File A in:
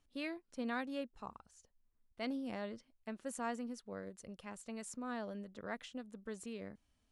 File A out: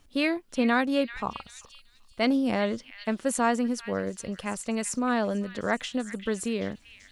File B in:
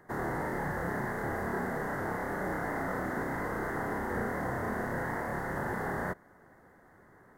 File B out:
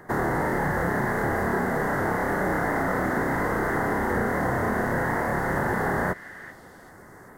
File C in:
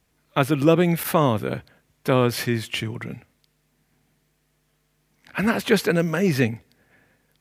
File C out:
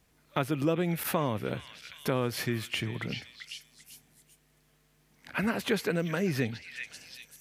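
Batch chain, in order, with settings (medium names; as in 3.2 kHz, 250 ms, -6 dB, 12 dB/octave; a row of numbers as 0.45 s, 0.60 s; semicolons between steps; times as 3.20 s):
repeats whose band climbs or falls 388 ms, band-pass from 2.5 kHz, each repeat 0.7 oct, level -9 dB; compression 2:1, threshold -34 dBFS; peak normalisation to -12 dBFS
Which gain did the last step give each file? +16.0 dB, +11.0 dB, +0.5 dB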